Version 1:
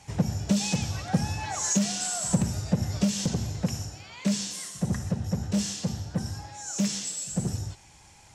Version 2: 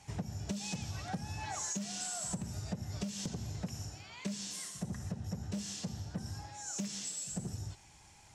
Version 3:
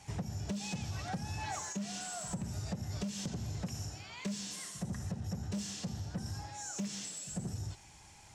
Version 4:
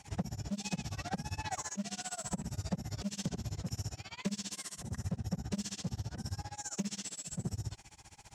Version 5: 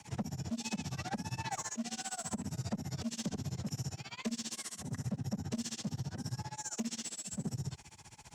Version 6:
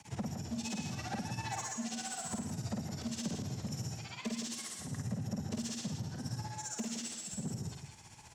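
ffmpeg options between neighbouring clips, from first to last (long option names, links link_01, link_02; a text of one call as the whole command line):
ffmpeg -i in.wav -af "bandreject=frequency=520:width=12,acompressor=threshold=-30dB:ratio=6,volume=-5.5dB" out.wav
ffmpeg -i in.wav -filter_complex "[0:a]acrossover=split=3200[link_01][link_02];[link_02]alimiter=level_in=13dB:limit=-24dB:level=0:latency=1:release=401,volume=-13dB[link_03];[link_01][link_03]amix=inputs=2:normalize=0,asoftclip=type=tanh:threshold=-31.5dB,volume=2.5dB" out.wav
ffmpeg -i in.wav -af "tremolo=f=15:d=0.97,volume=4.5dB" out.wav
ffmpeg -i in.wav -af "afreqshift=29,asoftclip=type=tanh:threshold=-28.5dB,volume=1dB" out.wav
ffmpeg -i in.wav -af "aecho=1:1:51|164:0.668|0.447,volume=-2dB" out.wav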